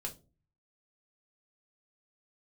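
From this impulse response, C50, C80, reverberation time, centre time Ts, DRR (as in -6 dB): 15.5 dB, 23.0 dB, no single decay rate, 11 ms, 1.5 dB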